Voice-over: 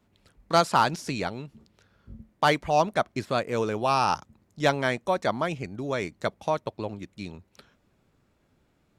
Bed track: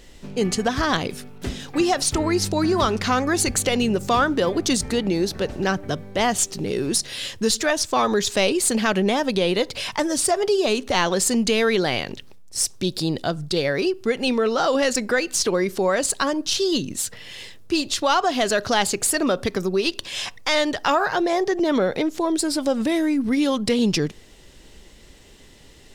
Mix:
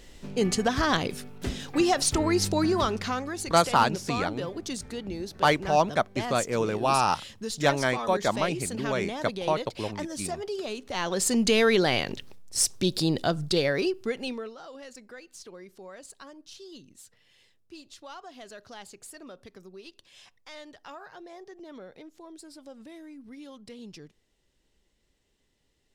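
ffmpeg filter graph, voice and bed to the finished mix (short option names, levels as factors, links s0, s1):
-filter_complex "[0:a]adelay=3000,volume=1[s0];[1:a]volume=2.82,afade=t=out:st=2.55:d=0.78:silence=0.298538,afade=t=in:st=10.89:d=0.65:silence=0.251189,afade=t=out:st=13.5:d=1.05:silence=0.0707946[s1];[s0][s1]amix=inputs=2:normalize=0"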